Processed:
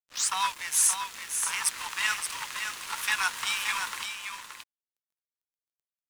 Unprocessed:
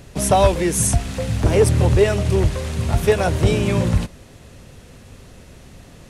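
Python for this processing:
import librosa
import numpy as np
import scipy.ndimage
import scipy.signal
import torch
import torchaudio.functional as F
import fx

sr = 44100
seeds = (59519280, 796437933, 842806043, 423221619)

p1 = fx.tape_start_head(x, sr, length_s=0.31)
p2 = scipy.signal.sosfilt(scipy.signal.butter(12, 930.0, 'highpass', fs=sr, output='sos'), p1)
p3 = fx.rider(p2, sr, range_db=3, speed_s=2.0)
p4 = np.sign(p3) * np.maximum(np.abs(p3) - 10.0 ** (-38.0 / 20.0), 0.0)
y = p4 + fx.echo_single(p4, sr, ms=574, db=-7.0, dry=0)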